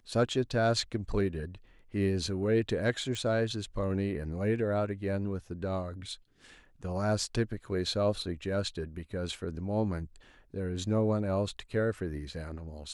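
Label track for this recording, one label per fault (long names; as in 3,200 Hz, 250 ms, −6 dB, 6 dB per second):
3.150000	3.150000	click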